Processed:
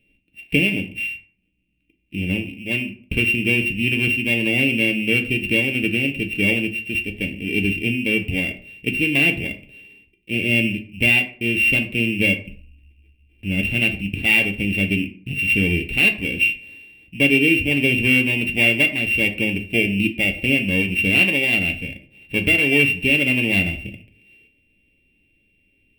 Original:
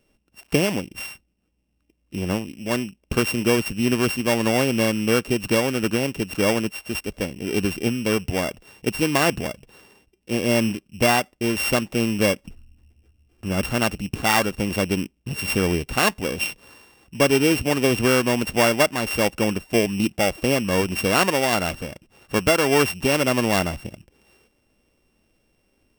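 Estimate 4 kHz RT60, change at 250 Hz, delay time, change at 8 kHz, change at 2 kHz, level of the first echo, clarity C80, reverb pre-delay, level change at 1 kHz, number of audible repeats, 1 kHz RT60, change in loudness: 0.30 s, +1.0 dB, none, -9.5 dB, +8.5 dB, none, 16.5 dB, 6 ms, -15.5 dB, none, 0.45 s, +3.5 dB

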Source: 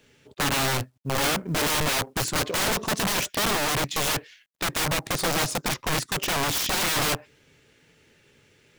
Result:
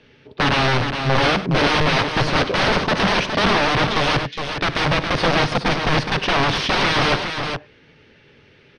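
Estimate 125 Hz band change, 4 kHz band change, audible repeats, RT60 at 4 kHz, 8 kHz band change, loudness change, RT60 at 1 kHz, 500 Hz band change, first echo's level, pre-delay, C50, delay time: +9.5 dB, +6.0 dB, 3, none, -8.5 dB, +6.0 dB, none, +9.0 dB, -15.5 dB, none, none, 58 ms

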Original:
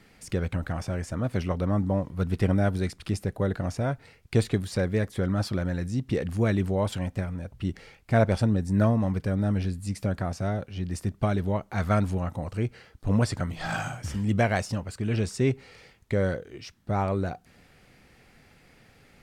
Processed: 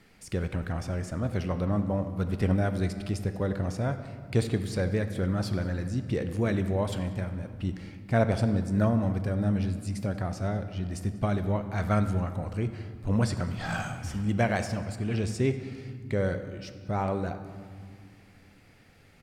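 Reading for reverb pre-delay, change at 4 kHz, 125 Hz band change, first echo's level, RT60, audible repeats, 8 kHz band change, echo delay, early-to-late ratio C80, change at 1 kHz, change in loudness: 23 ms, -2.0 dB, -1.5 dB, -22.5 dB, 2.4 s, 1, -2.5 dB, 0.19 s, 11.0 dB, -2.0 dB, -1.5 dB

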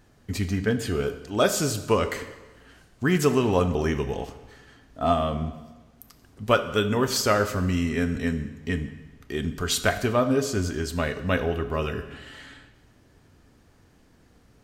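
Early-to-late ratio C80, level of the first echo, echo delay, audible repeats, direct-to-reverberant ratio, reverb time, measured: 13.0 dB, none, none, none, 9.5 dB, 1.2 s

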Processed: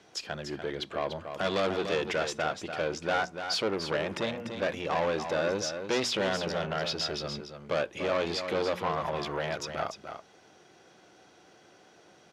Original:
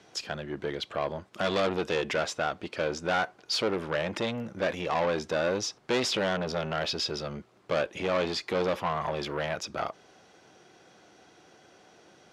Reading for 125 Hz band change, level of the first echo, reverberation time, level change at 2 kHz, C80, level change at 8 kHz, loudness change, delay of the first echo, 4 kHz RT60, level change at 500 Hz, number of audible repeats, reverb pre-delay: -2.0 dB, -8.0 dB, none, -1.0 dB, none, -1.0 dB, -1.0 dB, 0.293 s, none, -1.0 dB, 1, none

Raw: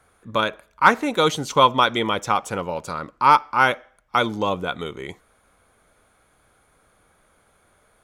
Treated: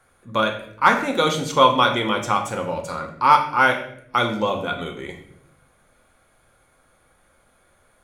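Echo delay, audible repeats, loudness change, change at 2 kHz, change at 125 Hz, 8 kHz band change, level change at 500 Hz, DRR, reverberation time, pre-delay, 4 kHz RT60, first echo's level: none, none, +0.5 dB, +1.0 dB, +1.0 dB, +0.5 dB, +1.0 dB, 2.0 dB, 0.65 s, 4 ms, 0.55 s, none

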